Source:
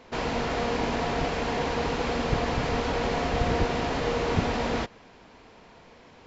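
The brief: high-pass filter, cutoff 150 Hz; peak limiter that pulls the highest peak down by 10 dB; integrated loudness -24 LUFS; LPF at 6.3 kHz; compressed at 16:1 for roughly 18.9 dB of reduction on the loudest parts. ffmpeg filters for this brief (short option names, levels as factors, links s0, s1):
-af "highpass=150,lowpass=6300,acompressor=threshold=0.00794:ratio=16,volume=21.1,alimiter=limit=0.178:level=0:latency=1"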